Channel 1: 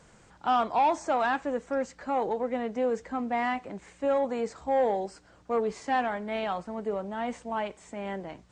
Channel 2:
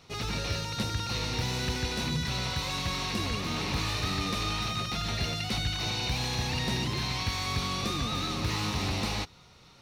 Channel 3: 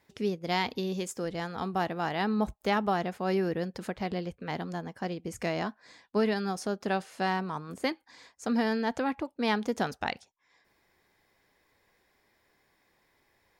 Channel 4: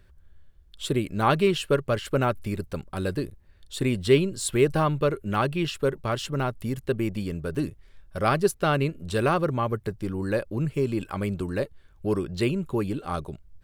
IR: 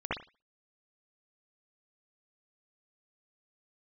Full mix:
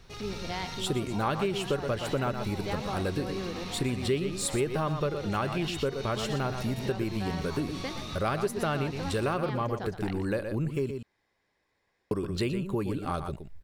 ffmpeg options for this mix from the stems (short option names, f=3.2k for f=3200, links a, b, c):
-filter_complex "[0:a]adelay=400,volume=-8dB[a];[1:a]volume=-3.5dB,asplit=2[b][c];[c]volume=-7dB[d];[2:a]lowpass=7.9k,volume=-6.5dB,asplit=2[e][f];[f]volume=-10.5dB[g];[3:a]volume=1.5dB,asplit=3[h][i][j];[h]atrim=end=10.91,asetpts=PTS-STARTPTS,afade=t=out:st=10.906:d=0.004:c=hsin[k];[i]atrim=start=10.91:end=12.11,asetpts=PTS-STARTPTS,volume=0[l];[j]atrim=start=12.11,asetpts=PTS-STARTPTS,afade=t=in:d=0.004:c=hsin[m];[k][l][m]concat=n=3:v=0:a=1,asplit=3[n][o][p];[o]volume=-9.5dB[q];[p]apad=whole_len=433030[r];[b][r]sidechaincompress=threshold=-38dB:ratio=8:attack=16:release=147[s];[a][s]amix=inputs=2:normalize=0,alimiter=level_in=8.5dB:limit=-24dB:level=0:latency=1:release=134,volume=-8.5dB,volume=0dB[t];[d][g][q]amix=inputs=3:normalize=0,aecho=0:1:119:1[u];[e][n][t][u]amix=inputs=4:normalize=0,acompressor=threshold=-28dB:ratio=3"